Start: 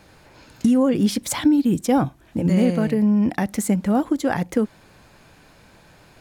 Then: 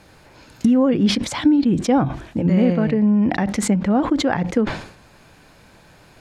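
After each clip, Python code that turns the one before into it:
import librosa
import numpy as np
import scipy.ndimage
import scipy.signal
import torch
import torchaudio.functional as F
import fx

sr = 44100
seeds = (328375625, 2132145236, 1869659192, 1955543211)

y = fx.env_lowpass_down(x, sr, base_hz=3000.0, full_db=-18.0)
y = fx.sustainer(y, sr, db_per_s=96.0)
y = F.gain(torch.from_numpy(y), 1.5).numpy()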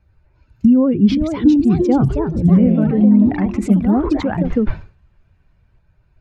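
y = fx.bin_expand(x, sr, power=1.5)
y = fx.echo_pitch(y, sr, ms=574, semitones=3, count=3, db_per_echo=-6.0)
y = fx.riaa(y, sr, side='playback')
y = F.gain(torch.from_numpy(y), -1.5).numpy()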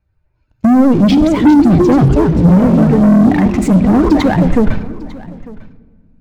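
y = fx.leveller(x, sr, passes=3)
y = y + 10.0 ** (-20.5 / 20.0) * np.pad(y, (int(899 * sr / 1000.0), 0))[:len(y)]
y = fx.room_shoebox(y, sr, seeds[0], volume_m3=2200.0, walls='mixed', distance_m=0.46)
y = F.gain(torch.from_numpy(y), -2.0).numpy()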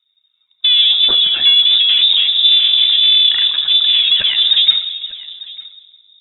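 y = x + 10.0 ** (-23.0 / 20.0) * np.pad(x, (int(345 * sr / 1000.0), 0))[:len(x)]
y = fx.freq_invert(y, sr, carrier_hz=3700)
y = F.gain(torch.from_numpy(y), -3.5).numpy()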